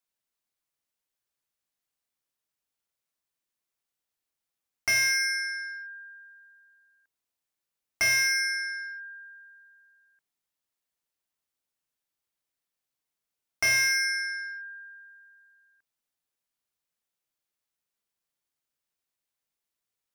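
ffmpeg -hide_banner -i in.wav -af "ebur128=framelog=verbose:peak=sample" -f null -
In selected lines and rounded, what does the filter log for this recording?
Integrated loudness:
  I:         -25.3 LUFS
  Threshold: -38.3 LUFS
Loudness range:
  LRA:        10.2 LU
  Threshold: -50.7 LUFS
  LRA low:   -39.1 LUFS
  LRA high:  -28.9 LUFS
Sample peak:
  Peak:      -14.5 dBFS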